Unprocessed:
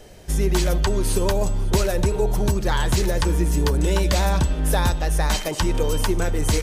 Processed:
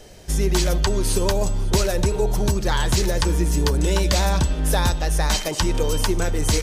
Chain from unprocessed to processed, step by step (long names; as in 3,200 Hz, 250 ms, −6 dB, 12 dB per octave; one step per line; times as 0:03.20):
parametric band 5,400 Hz +4.5 dB 1.3 octaves